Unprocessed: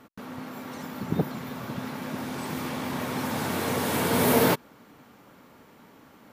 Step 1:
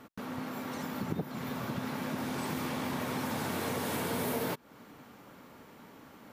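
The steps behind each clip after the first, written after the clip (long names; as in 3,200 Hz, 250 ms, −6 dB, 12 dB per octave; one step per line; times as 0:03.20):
downward compressor 6 to 1, threshold −31 dBFS, peak gain reduction 14 dB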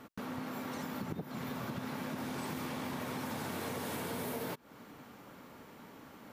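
downward compressor 3 to 1, threshold −37 dBFS, peak gain reduction 7.5 dB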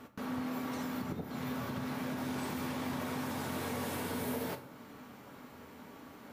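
convolution reverb RT60 0.85 s, pre-delay 6 ms, DRR 5.5 dB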